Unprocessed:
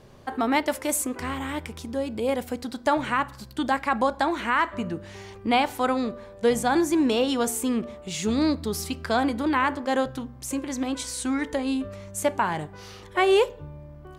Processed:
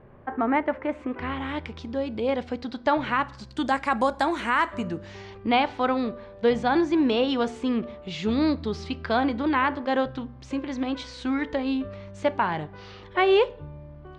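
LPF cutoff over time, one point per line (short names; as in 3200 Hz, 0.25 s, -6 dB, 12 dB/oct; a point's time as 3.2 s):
LPF 24 dB/oct
0.83 s 2100 Hz
1.55 s 4600 Hz
3 s 4600 Hz
4.1 s 11000 Hz
4.61 s 11000 Hz
5.39 s 4300 Hz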